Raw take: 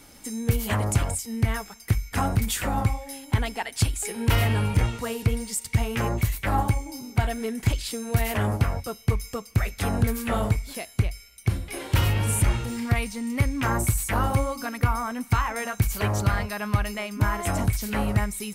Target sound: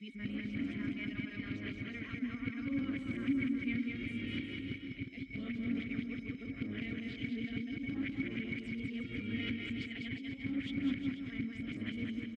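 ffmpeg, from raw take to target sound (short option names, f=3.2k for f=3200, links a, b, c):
-filter_complex "[0:a]areverse,lowpass=3.9k,atempo=1.5,asplit=3[a][b][c];[a]bandpass=f=270:t=q:w=8,volume=0dB[d];[b]bandpass=f=2.29k:t=q:w=8,volume=-6dB[e];[c]bandpass=f=3.01k:t=q:w=8,volume=-9dB[f];[d][e][f]amix=inputs=3:normalize=0,asplit=2[g][h];[h]aecho=0:1:200|360|488|590.4|672.3:0.631|0.398|0.251|0.158|0.1[i];[g][i]amix=inputs=2:normalize=0"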